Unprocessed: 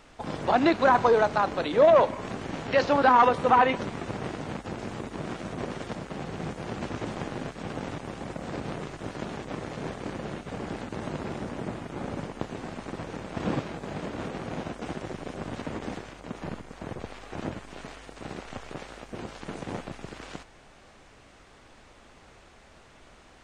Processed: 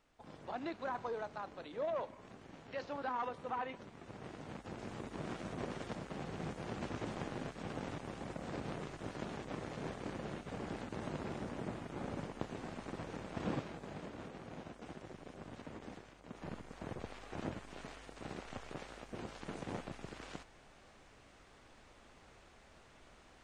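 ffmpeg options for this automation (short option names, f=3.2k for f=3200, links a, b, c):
-af "volume=-1dB,afade=t=in:st=3.93:d=1.33:silence=0.251189,afade=t=out:st=13.23:d=1.07:silence=0.473151,afade=t=in:st=16.24:d=0.42:silence=0.446684"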